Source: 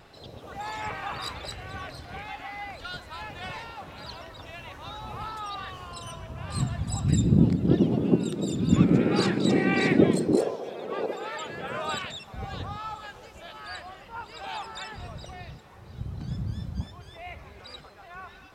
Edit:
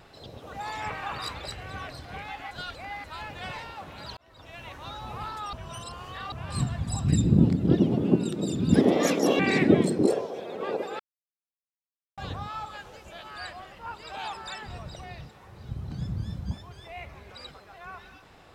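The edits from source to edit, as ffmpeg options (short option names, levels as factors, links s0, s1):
-filter_complex "[0:a]asplit=10[s0][s1][s2][s3][s4][s5][s6][s7][s8][s9];[s0]atrim=end=2.512[s10];[s1]atrim=start=2.508:end=3.042,asetpts=PTS-STARTPTS,areverse[s11];[s2]atrim=start=3.038:end=4.17,asetpts=PTS-STARTPTS,afade=t=out:st=1.128:d=0.004:c=hsin[s12];[s3]atrim=start=4.17:end=5.532,asetpts=PTS-STARTPTS,afade=t=in:d=0.49[s13];[s4]atrim=start=5.528:end=6.322,asetpts=PTS-STARTPTS,areverse[s14];[s5]atrim=start=6.318:end=8.744[s15];[s6]atrim=start=8.74:end=9.69,asetpts=PTS-STARTPTS,asetrate=63945,aresample=44100,atrim=end_sample=28893,asetpts=PTS-STARTPTS[s16];[s7]atrim=start=9.686:end=11.29,asetpts=PTS-STARTPTS,afade=t=out:st=1.6:d=0.004:c=hsin[s17];[s8]atrim=start=11.29:end=12.47,asetpts=PTS-STARTPTS,volume=0[s18];[s9]atrim=start=12.47,asetpts=PTS-STARTPTS,afade=t=in:d=0.004:c=hsin[s19];[s10][s11]acrossfade=d=0.004:c1=hsin:c2=hsin[s20];[s12][s13]concat=n=2:v=0:a=1[s21];[s20][s21]acrossfade=d=0.004:c1=hsin:c2=hsin[s22];[s22][s14]acrossfade=d=0.004:c1=hsin:c2=hsin[s23];[s23][s15]acrossfade=d=0.004:c1=hsin:c2=hsin[s24];[s24][s16]acrossfade=d=0.004:c1=hsin:c2=hsin[s25];[s17][s18][s19]concat=n=3:v=0:a=1[s26];[s25][s26]acrossfade=d=0.004:c1=hsin:c2=hsin"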